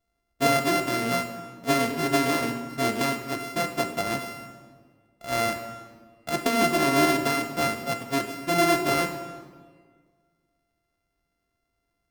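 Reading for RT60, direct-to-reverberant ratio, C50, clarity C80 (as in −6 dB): 1.7 s, 5.5 dB, 8.0 dB, 9.5 dB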